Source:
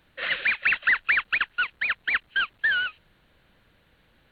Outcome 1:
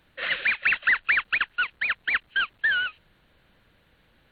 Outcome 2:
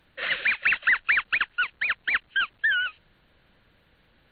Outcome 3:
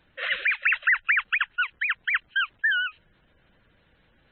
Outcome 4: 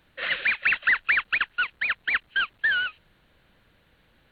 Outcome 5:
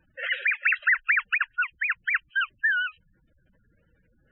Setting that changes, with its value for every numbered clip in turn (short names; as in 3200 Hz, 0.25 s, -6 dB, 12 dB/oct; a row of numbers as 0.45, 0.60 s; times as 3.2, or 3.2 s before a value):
spectral gate, under each frame's peak: -45, -35, -20, -60, -10 dB